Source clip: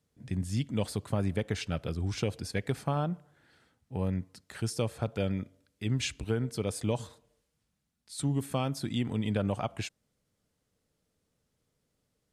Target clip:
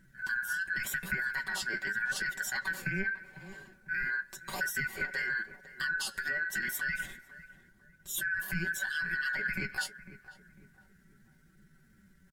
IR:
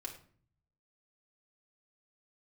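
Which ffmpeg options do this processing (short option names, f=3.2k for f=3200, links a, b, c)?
-filter_complex "[0:a]afftfilt=real='real(if(lt(b,960),b+48*(1-2*mod(floor(b/48),2)),b),0)':imag='imag(if(lt(b,960),b+48*(1-2*mod(floor(b/48),2)),b),0)':win_size=2048:overlap=0.75,bass=f=250:g=9,treble=f=4k:g=1,aecho=1:1:6.8:0.71,adynamicequalizer=threshold=0.00398:dfrequency=810:dqfactor=4.2:tfrequency=810:tqfactor=4.2:attack=5:release=100:ratio=0.375:range=2.5:mode=boostabove:tftype=bell,acrossover=split=200[a][b];[a]acompressor=mode=upward:threshold=-49dB:ratio=2.5[c];[b]alimiter=level_in=0.5dB:limit=-24dB:level=0:latency=1:release=14,volume=-0.5dB[d];[c][d]amix=inputs=2:normalize=0,acompressor=threshold=-36dB:ratio=5,asetrate=57191,aresample=44100,atempo=0.771105,flanger=delay=5.3:depth=6.7:regen=46:speed=0.86:shape=triangular,asplit=2[e][f];[f]adelay=500,lowpass=f=1.1k:p=1,volume=-13dB,asplit=2[g][h];[h]adelay=500,lowpass=f=1.1k:p=1,volume=0.46,asplit=2[i][j];[j]adelay=500,lowpass=f=1.1k:p=1,volume=0.46,asplit=2[k][l];[l]adelay=500,lowpass=f=1.1k:p=1,volume=0.46,asplit=2[m][n];[n]adelay=500,lowpass=f=1.1k:p=1,volume=0.46[o];[g][i][k][m][o]amix=inputs=5:normalize=0[p];[e][p]amix=inputs=2:normalize=0,volume=9dB"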